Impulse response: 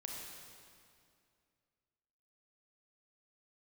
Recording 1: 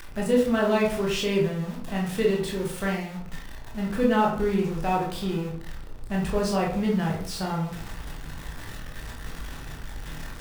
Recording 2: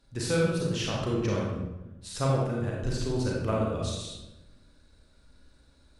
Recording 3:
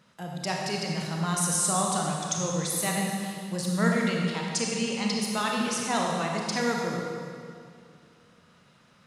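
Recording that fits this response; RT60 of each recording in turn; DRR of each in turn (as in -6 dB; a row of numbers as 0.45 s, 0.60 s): 3; 0.55 s, 1.0 s, 2.3 s; -3.0 dB, -4.0 dB, -1.5 dB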